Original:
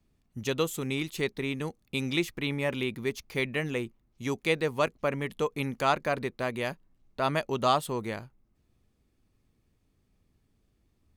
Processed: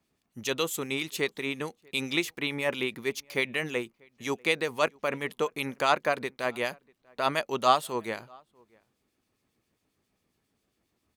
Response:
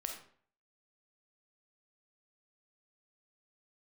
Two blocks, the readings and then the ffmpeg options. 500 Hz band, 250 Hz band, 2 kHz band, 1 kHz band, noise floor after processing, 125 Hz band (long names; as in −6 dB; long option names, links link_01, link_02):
0.0 dB, −2.5 dB, +3.0 dB, +2.0 dB, −78 dBFS, −7.5 dB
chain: -filter_complex "[0:a]highpass=frequency=460:poles=1,acrossover=split=2300[link_01][link_02];[link_01]aeval=exprs='val(0)*(1-0.5/2+0.5/2*cos(2*PI*7.4*n/s))':channel_layout=same[link_03];[link_02]aeval=exprs='val(0)*(1-0.5/2-0.5/2*cos(2*PI*7.4*n/s))':channel_layout=same[link_04];[link_03][link_04]amix=inputs=2:normalize=0,asplit=2[link_05][link_06];[link_06]adelay=641.4,volume=-28dB,highshelf=frequency=4000:gain=-14.4[link_07];[link_05][link_07]amix=inputs=2:normalize=0,volume=5.5dB"